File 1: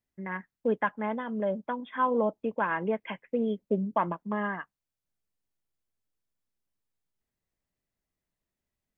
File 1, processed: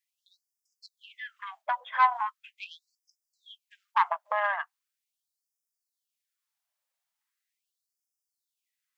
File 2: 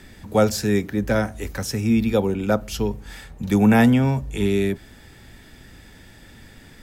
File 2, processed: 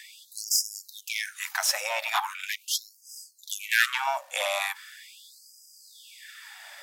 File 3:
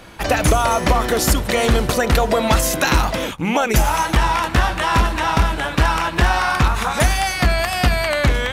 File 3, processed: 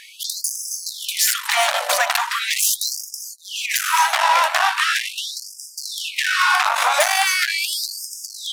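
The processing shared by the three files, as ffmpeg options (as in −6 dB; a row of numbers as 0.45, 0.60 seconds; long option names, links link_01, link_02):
-af "aeval=exprs='(tanh(7.94*val(0)+0.6)-tanh(0.6))/7.94':channel_layout=same,afftfilt=real='re*gte(b*sr/1024,510*pow(4900/510,0.5+0.5*sin(2*PI*0.4*pts/sr)))':imag='im*gte(b*sr/1024,510*pow(4900/510,0.5+0.5*sin(2*PI*0.4*pts/sr)))':win_size=1024:overlap=0.75,volume=8.5dB"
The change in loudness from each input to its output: +2.0, −7.0, −1.5 LU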